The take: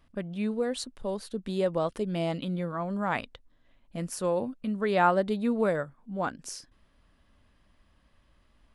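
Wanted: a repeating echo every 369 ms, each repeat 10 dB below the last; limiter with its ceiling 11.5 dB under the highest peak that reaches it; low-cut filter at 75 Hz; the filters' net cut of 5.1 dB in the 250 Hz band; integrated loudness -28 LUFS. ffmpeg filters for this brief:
-af "highpass=75,equalizer=f=250:t=o:g=-7,alimiter=limit=0.0794:level=0:latency=1,aecho=1:1:369|738|1107|1476:0.316|0.101|0.0324|0.0104,volume=2"

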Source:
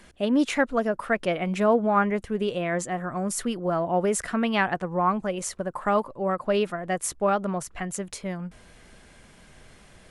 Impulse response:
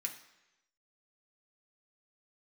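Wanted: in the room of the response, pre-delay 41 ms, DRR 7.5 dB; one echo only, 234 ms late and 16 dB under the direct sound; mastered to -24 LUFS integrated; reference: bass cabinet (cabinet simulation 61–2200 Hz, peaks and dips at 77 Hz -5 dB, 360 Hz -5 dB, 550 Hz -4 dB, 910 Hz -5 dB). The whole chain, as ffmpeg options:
-filter_complex "[0:a]aecho=1:1:234:0.158,asplit=2[s0][s1];[1:a]atrim=start_sample=2205,adelay=41[s2];[s1][s2]afir=irnorm=-1:irlink=0,volume=0.447[s3];[s0][s3]amix=inputs=2:normalize=0,highpass=f=61:w=0.5412,highpass=f=61:w=1.3066,equalizer=f=77:t=q:w=4:g=-5,equalizer=f=360:t=q:w=4:g=-5,equalizer=f=550:t=q:w=4:g=-4,equalizer=f=910:t=q:w=4:g=-5,lowpass=f=2200:w=0.5412,lowpass=f=2200:w=1.3066,volume=1.5"

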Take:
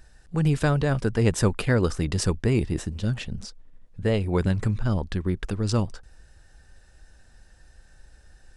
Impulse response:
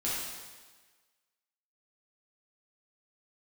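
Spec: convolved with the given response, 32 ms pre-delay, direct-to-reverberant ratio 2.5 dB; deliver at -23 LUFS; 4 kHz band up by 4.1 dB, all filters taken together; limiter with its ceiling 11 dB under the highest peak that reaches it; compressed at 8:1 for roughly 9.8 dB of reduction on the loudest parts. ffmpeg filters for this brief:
-filter_complex "[0:a]equalizer=f=4000:t=o:g=5.5,acompressor=threshold=0.0447:ratio=8,alimiter=level_in=1.19:limit=0.0631:level=0:latency=1,volume=0.841,asplit=2[s0][s1];[1:a]atrim=start_sample=2205,adelay=32[s2];[s1][s2]afir=irnorm=-1:irlink=0,volume=0.355[s3];[s0][s3]amix=inputs=2:normalize=0,volume=3.55"

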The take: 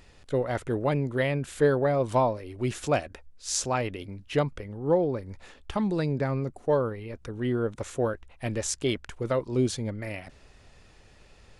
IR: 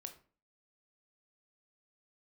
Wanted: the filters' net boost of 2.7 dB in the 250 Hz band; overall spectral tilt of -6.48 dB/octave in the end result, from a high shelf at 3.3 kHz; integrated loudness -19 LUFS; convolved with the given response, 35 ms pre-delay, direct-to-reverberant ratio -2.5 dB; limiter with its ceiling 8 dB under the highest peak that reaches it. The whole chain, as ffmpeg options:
-filter_complex "[0:a]equalizer=f=250:t=o:g=3.5,highshelf=f=3300:g=-8.5,alimiter=limit=0.119:level=0:latency=1,asplit=2[s0][s1];[1:a]atrim=start_sample=2205,adelay=35[s2];[s1][s2]afir=irnorm=-1:irlink=0,volume=2.37[s3];[s0][s3]amix=inputs=2:normalize=0,volume=2"

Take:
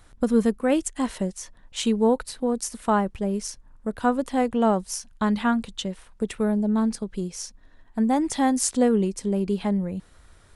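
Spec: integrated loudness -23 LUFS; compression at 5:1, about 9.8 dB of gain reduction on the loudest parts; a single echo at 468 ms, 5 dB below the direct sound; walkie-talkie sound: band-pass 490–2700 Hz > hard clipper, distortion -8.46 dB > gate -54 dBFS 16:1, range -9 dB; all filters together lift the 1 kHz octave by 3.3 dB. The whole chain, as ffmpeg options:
-af "equalizer=f=1000:t=o:g=5,acompressor=threshold=0.0562:ratio=5,highpass=490,lowpass=2700,aecho=1:1:468:0.562,asoftclip=type=hard:threshold=0.0299,agate=range=0.355:threshold=0.002:ratio=16,volume=5.31"

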